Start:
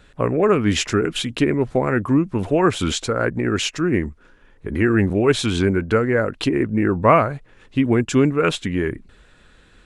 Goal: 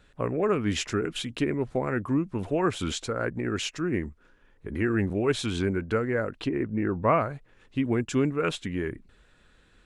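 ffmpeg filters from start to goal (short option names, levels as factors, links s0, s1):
-filter_complex "[0:a]asettb=1/sr,asplit=3[s0][s1][s2];[s0]atrim=end=6.404[s3];[s1]atrim=start=6.4:end=7.21,asetpts=PTS-STARTPTS,afade=t=in:d=0.004:c=qsin,afade=t=out:st=0.806:d=0.004:c=qsin,lowpass=f=3000:p=1[s4];[s2]atrim=start=7.206[s5];[s3][s4]acrossfade=d=0.004:c1=hsin:c2=qsin[s6];[s6][s5]acrossfade=d=0.004:c1=qsin:c2=hsin,volume=0.376"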